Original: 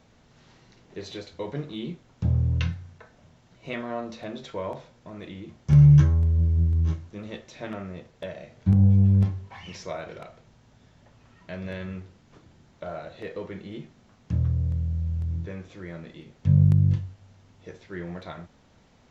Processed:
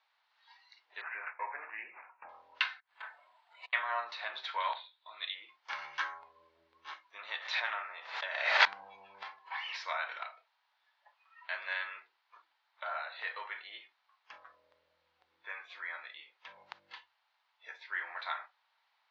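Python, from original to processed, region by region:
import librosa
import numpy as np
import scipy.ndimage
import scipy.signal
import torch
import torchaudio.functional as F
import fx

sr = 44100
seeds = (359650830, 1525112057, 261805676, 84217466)

y = fx.chain(x, sr, fx.high_shelf(hz=2700.0, db=-9.5),
    fx.resample_bad(factor=8, down='none', up='filtered'),
    fx.sustainer(db_per_s=99.0), at=(1.01, 2.29))
y = fx.chain(y, sr, fx.self_delay(depth_ms=0.85),
    fx.over_compress(threshold_db=-49.0, ratio=-0.5),
    fx.resample_bad(factor=4, down='filtered', up='hold'), at=(2.8, 3.73))
y = fx.chain(y, sr, fx.lowpass_res(hz=3800.0, q=5.4),
    fx.upward_expand(threshold_db=-46.0, expansion=1.5), at=(4.6, 5.35))
y = fx.chain(y, sr, fx.highpass(hz=50.0, slope=12),
    fx.echo_single(ms=155, db=-18.5),
    fx.pre_swell(db_per_s=50.0), at=(7.24, 9.65))
y = scipy.signal.sosfilt(scipy.signal.ellip(3, 1.0, 70, [880.0, 4400.0], 'bandpass', fs=sr, output='sos'), y)
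y = fx.noise_reduce_blind(y, sr, reduce_db=14)
y = fx.dynamic_eq(y, sr, hz=1600.0, q=1.7, threshold_db=-55.0, ratio=4.0, max_db=4)
y = F.gain(torch.from_numpy(y), 4.5).numpy()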